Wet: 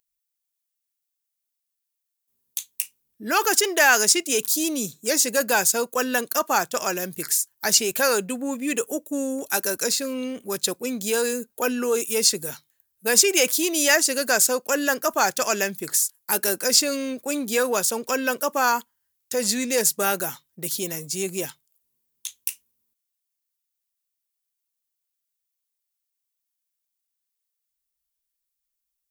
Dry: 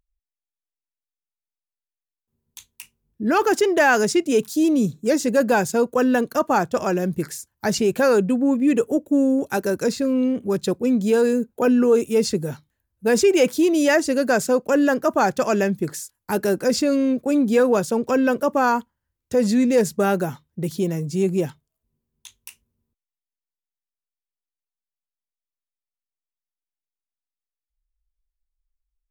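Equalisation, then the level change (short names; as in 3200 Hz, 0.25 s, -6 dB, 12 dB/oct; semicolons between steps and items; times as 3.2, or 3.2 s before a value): tilt +4.5 dB/oct; -1.5 dB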